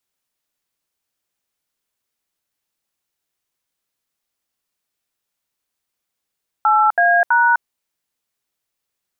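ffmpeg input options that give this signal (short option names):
-f lavfi -i "aevalsrc='0.211*clip(min(mod(t,0.327),0.254-mod(t,0.327))/0.002,0,1)*(eq(floor(t/0.327),0)*(sin(2*PI*852*mod(t,0.327))+sin(2*PI*1336*mod(t,0.327)))+eq(floor(t/0.327),1)*(sin(2*PI*697*mod(t,0.327))+sin(2*PI*1633*mod(t,0.327)))+eq(floor(t/0.327),2)*(sin(2*PI*941*mod(t,0.327))+sin(2*PI*1477*mod(t,0.327))))':d=0.981:s=44100"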